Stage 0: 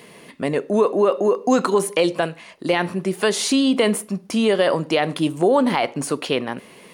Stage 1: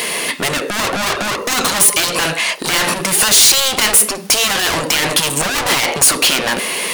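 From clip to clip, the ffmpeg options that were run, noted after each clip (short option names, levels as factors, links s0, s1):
-filter_complex "[0:a]asplit=2[s0][s1];[s1]highpass=f=720:p=1,volume=44.7,asoftclip=type=tanh:threshold=0.501[s2];[s0][s2]amix=inputs=2:normalize=0,lowpass=f=4800:p=1,volume=0.501,afftfilt=real='re*lt(hypot(re,im),1.12)':imag='im*lt(hypot(re,im),1.12)':win_size=1024:overlap=0.75,crystalizer=i=3:c=0,volume=0.794"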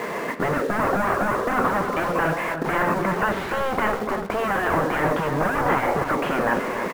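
-filter_complex "[0:a]lowpass=f=1600:w=0.5412,lowpass=f=1600:w=1.3066,asplit=2[s0][s1];[s1]acrusher=bits=4:mix=0:aa=0.000001,volume=0.473[s2];[s0][s2]amix=inputs=2:normalize=0,asplit=2[s3][s4];[s4]adelay=291.5,volume=0.398,highshelf=f=4000:g=-6.56[s5];[s3][s5]amix=inputs=2:normalize=0,volume=0.562"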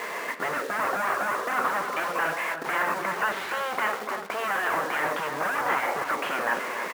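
-af "highpass=f=1400:p=1,volume=1.12"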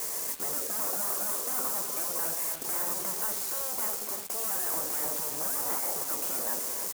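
-af "equalizer=f=1900:t=o:w=2.1:g=-14,aexciter=amount=11.4:drive=2.3:freq=4600,acrusher=bits=5:mix=0:aa=0.000001,volume=0.531"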